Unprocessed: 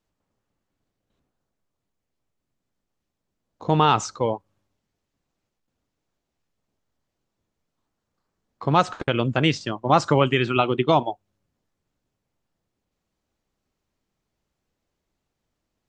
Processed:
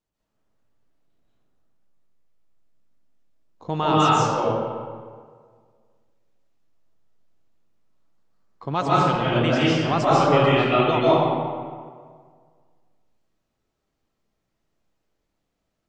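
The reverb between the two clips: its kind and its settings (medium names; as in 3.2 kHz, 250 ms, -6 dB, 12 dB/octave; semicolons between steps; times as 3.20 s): algorithmic reverb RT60 1.8 s, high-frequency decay 0.6×, pre-delay 105 ms, DRR -8.5 dB; trim -7 dB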